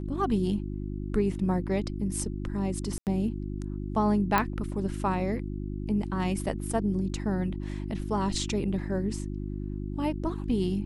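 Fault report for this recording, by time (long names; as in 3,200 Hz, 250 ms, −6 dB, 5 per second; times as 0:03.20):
mains hum 50 Hz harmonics 7 −34 dBFS
0:02.98–0:03.07: drop-out 88 ms
0:04.38: click −10 dBFS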